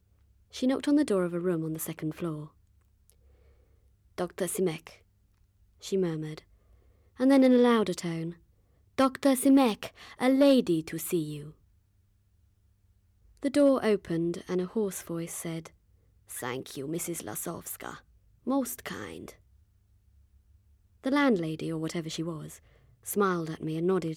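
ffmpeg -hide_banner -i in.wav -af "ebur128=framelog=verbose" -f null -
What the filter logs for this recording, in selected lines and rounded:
Integrated loudness:
  I:         -28.6 LUFS
  Threshold: -40.6 LUFS
Loudness range:
  LRA:        11.1 LU
  Threshold: -50.6 LUFS
  LRA low:   -37.4 LUFS
  LRA high:  -26.3 LUFS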